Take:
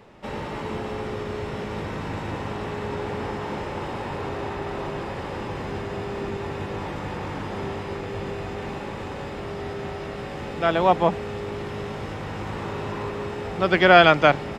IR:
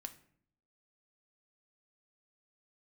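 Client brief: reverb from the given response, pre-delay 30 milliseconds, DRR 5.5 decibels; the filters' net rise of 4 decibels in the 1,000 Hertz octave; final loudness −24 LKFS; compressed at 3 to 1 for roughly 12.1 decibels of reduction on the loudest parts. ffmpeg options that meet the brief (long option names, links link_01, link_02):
-filter_complex "[0:a]equalizer=frequency=1000:width_type=o:gain=6,acompressor=threshold=-23dB:ratio=3,asplit=2[link_01][link_02];[1:a]atrim=start_sample=2205,adelay=30[link_03];[link_02][link_03]afir=irnorm=-1:irlink=0,volume=-1.5dB[link_04];[link_01][link_04]amix=inputs=2:normalize=0,volume=4dB"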